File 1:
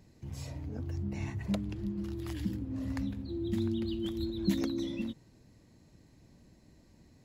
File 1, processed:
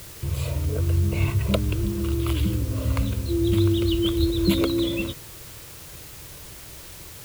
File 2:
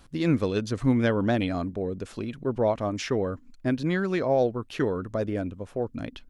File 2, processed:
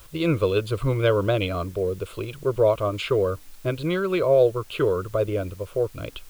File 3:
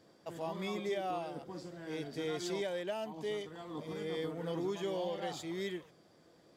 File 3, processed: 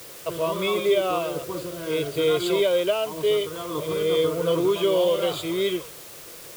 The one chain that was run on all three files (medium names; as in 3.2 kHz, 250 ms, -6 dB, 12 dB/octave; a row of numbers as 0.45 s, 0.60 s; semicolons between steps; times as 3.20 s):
static phaser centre 1.2 kHz, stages 8; word length cut 10-bit, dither triangular; normalise loudness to -24 LUFS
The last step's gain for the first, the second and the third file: +17.5 dB, +7.0 dB, +17.5 dB